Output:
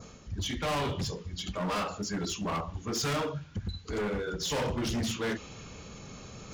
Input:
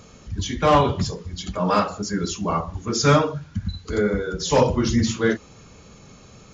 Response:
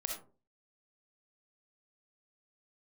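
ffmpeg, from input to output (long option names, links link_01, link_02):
-af "adynamicequalizer=threshold=0.00794:dfrequency=2900:dqfactor=1.6:tfrequency=2900:tqfactor=1.6:attack=5:release=100:ratio=0.375:range=3.5:mode=boostabove:tftype=bell,areverse,acompressor=mode=upward:threshold=-30dB:ratio=2.5,areverse,asoftclip=type=hard:threshold=-22dB,volume=-6.5dB"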